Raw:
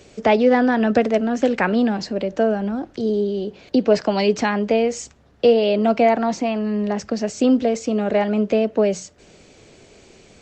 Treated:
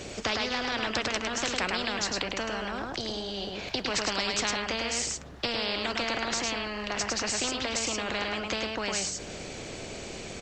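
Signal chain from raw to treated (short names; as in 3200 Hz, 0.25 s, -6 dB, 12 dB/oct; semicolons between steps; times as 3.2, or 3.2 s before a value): echo 0.105 s -6 dB; spectral compressor 4:1; gain -6.5 dB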